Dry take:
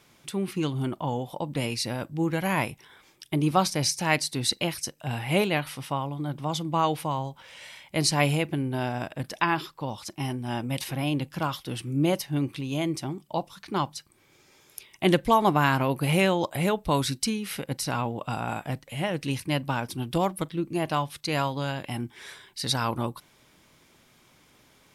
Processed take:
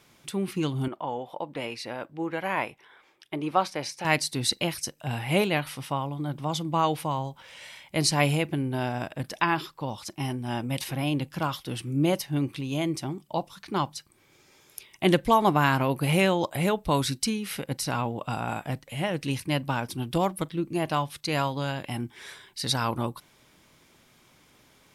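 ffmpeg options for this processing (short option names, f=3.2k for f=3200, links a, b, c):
-filter_complex "[0:a]asettb=1/sr,asplit=3[a][b][c];[a]atrim=end=0.884[d];[b]atrim=start=0.88:end=4.05,asetpts=PTS-STARTPTS,afade=t=in:d=0.004:c=qsin,afade=t=out:st=3.166:d=0.004:c=qsin,bass=f=250:g=-15,treble=f=4k:g=-14[e];[c]atrim=start=4.046[f];[d][e]acrossfade=d=0.004:c1=hsin:c2=qsin[g];[g][f]acrossfade=d=0.004:c1=qsin:c2=hsin"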